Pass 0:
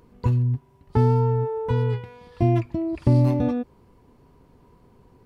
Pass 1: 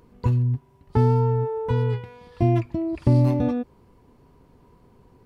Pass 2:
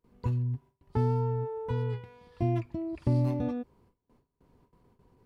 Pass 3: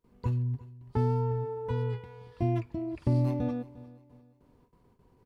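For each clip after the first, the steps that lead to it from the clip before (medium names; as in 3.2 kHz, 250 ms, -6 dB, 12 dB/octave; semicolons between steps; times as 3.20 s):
no audible change
gate with hold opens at -45 dBFS; trim -8.5 dB
feedback delay 352 ms, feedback 36%, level -19.5 dB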